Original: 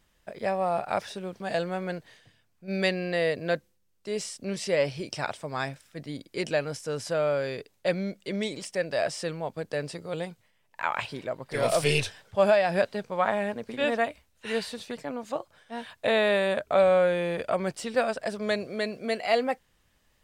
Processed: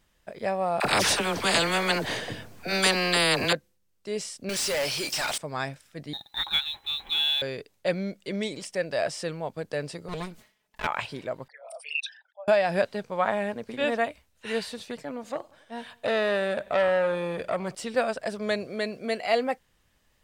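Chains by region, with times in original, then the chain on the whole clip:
0:00.80–0:03.53: parametric band 410 Hz +8 dB 2.9 octaves + all-pass dispersion lows, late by 48 ms, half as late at 650 Hz + every bin compressed towards the loudest bin 4 to 1
0:04.49–0:05.38: mu-law and A-law mismatch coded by mu + first-order pre-emphasis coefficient 0.8 + mid-hump overdrive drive 31 dB, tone 7,700 Hz, clips at −20 dBFS
0:06.13–0:07.42: voice inversion scrambler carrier 4,000 Hz + log-companded quantiser 6 bits + parametric band 830 Hz +14 dB 0.23 octaves
0:10.08–0:10.87: lower of the sound and its delayed copy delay 4.7 ms + level that may fall only so fast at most 130 dB per second
0:11.48–0:12.48: spectral envelope exaggerated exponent 3 + Bessel high-pass filter 1,400 Hz, order 8
0:15.02–0:17.75: repeating echo 92 ms, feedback 57%, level −24 dB + saturating transformer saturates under 1,300 Hz
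whole clip: no processing

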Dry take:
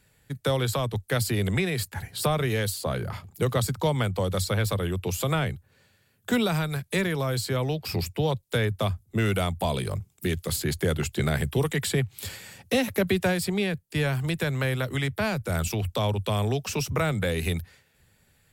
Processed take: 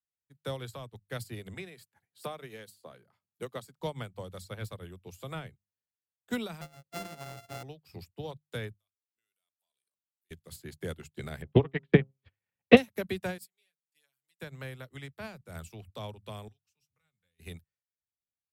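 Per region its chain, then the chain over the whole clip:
0:01.54–0:03.81: high-pass filter 180 Hz + floating-point word with a short mantissa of 6 bits
0:06.61–0:07.63: samples sorted by size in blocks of 64 samples + mains-hum notches 60/120/180/240/300/360/420/480/540 Hz
0:08.74–0:10.31: first difference + output level in coarse steps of 9 dB
0:11.42–0:12.77: low-pass filter 2,900 Hz 24 dB per octave + transient designer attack +9 dB, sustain −10 dB + hum removal 133.8 Hz, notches 10
0:13.38–0:14.41: first difference + comb filter 7 ms, depth 71%
0:16.48–0:17.40: guitar amp tone stack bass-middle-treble 5-5-5 + notch comb filter 330 Hz
whole clip: mains-hum notches 50/100/150/200 Hz; expander for the loud parts 2.5 to 1, over −44 dBFS; level +3.5 dB

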